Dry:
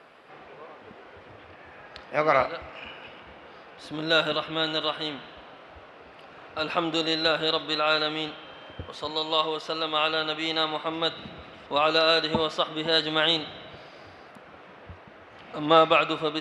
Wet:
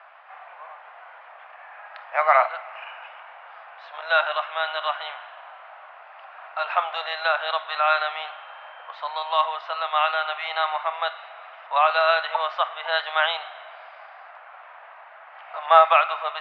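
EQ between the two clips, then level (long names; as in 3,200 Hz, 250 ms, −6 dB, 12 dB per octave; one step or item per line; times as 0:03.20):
Butterworth high-pass 670 Hz 48 dB per octave
low-pass filter 2,100 Hz 12 dB per octave
high-frequency loss of the air 130 metres
+7.5 dB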